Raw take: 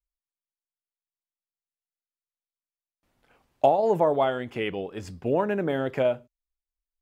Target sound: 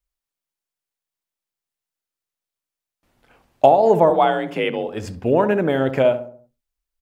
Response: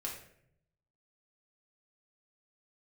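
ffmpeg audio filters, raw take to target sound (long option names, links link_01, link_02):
-filter_complex "[0:a]asettb=1/sr,asplit=3[link_01][link_02][link_03];[link_01]atrim=end=4.104[link_04];[link_02]atrim=start=4.1:end=4.88,asetpts=PTS-STARTPTS,afade=type=in:duration=0.004:curve=qsin,afade=type=out:start_time=0.776:duration=0.004:curve=qsin,afreqshift=47[link_05];[link_03]atrim=start=4.876[link_06];[link_04][link_05]acrossfade=duration=0.004:curve1=hsin:curve2=qsin[link_07];[link_07][link_06]acrossfade=duration=0.004:curve1=qsin:curve2=hsin,asplit=2[link_08][link_09];[link_09]adelay=67,lowpass=frequency=1200:poles=1,volume=-10dB,asplit=2[link_10][link_11];[link_11]adelay=67,lowpass=frequency=1200:poles=1,volume=0.5,asplit=2[link_12][link_13];[link_13]adelay=67,lowpass=frequency=1200:poles=1,volume=0.5,asplit=2[link_14][link_15];[link_15]adelay=67,lowpass=frequency=1200:poles=1,volume=0.5,asplit=2[link_16][link_17];[link_17]adelay=67,lowpass=frequency=1200:poles=1,volume=0.5[link_18];[link_10][link_12][link_14][link_16][link_18]amix=inputs=5:normalize=0[link_19];[link_08][link_19]amix=inputs=2:normalize=0,volume=7dB"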